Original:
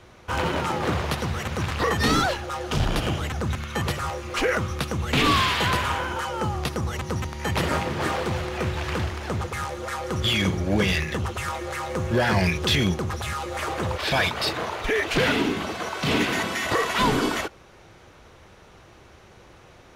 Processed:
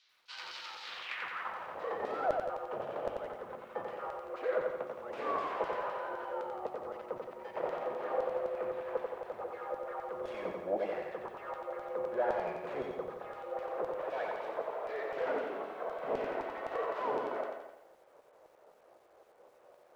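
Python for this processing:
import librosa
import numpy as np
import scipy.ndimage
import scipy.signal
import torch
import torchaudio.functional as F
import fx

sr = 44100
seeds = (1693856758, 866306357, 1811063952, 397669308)

p1 = fx.tracing_dist(x, sr, depth_ms=0.4)
p2 = fx.filter_sweep_bandpass(p1, sr, from_hz=4600.0, to_hz=550.0, start_s=0.84, end_s=1.72, q=2.8)
p3 = fx.high_shelf(p2, sr, hz=4600.0, db=-12.0)
p4 = fx.filter_lfo_bandpass(p3, sr, shape='saw_down', hz=3.9, low_hz=820.0, high_hz=4900.0, q=0.72)
p5 = fx.low_shelf(p4, sr, hz=170.0, db=5.5)
p6 = fx.hum_notches(p5, sr, base_hz=50, count=6)
p7 = p6 + fx.echo_feedback(p6, sr, ms=168, feedback_pct=27, wet_db=-10.0, dry=0)
p8 = fx.echo_crushed(p7, sr, ms=90, feedback_pct=35, bits=12, wet_db=-4.0)
y = p8 * 10.0 ** (1.5 / 20.0)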